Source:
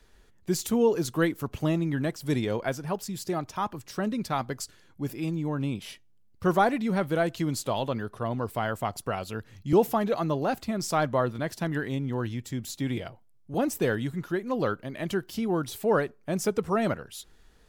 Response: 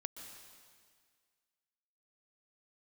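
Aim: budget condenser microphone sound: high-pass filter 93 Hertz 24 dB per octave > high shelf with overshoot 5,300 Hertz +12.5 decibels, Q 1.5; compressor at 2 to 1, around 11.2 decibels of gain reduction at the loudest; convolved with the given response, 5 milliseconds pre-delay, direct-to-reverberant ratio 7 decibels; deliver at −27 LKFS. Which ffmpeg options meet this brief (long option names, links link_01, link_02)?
-filter_complex "[0:a]acompressor=threshold=-38dB:ratio=2,asplit=2[link_01][link_02];[1:a]atrim=start_sample=2205,adelay=5[link_03];[link_02][link_03]afir=irnorm=-1:irlink=0,volume=-4.5dB[link_04];[link_01][link_04]amix=inputs=2:normalize=0,highpass=frequency=93:width=0.5412,highpass=frequency=93:width=1.3066,highshelf=frequency=5300:width_type=q:width=1.5:gain=12.5,volume=6dB"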